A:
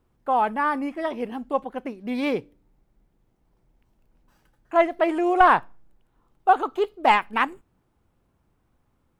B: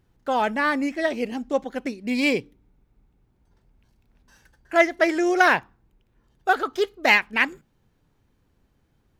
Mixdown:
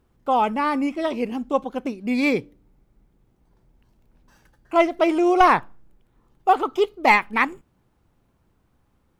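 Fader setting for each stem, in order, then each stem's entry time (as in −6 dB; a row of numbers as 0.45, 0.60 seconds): +2.0, −5.5 decibels; 0.00, 0.00 seconds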